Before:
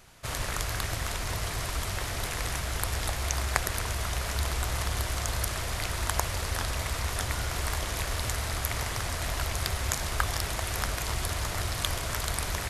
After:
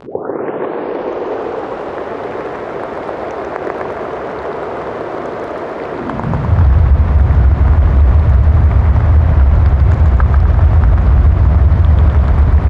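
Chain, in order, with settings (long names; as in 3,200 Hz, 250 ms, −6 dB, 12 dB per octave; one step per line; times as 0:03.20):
turntable start at the beginning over 2.12 s
low-shelf EQ 82 Hz +7.5 dB
bouncing-ball delay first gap 140 ms, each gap 0.8×, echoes 5
surface crackle 160 per second −44 dBFS
low-pass filter 1,200 Hz 12 dB per octave
low-shelf EQ 380 Hz +6 dB
echo with shifted repeats 406 ms, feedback 43%, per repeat +90 Hz, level −16.5 dB
high-pass filter sweep 410 Hz → 70 Hz, 0:05.88–0:06.66
upward compression, threshold −34 dBFS
boost into a limiter +11.5 dB
level −1 dB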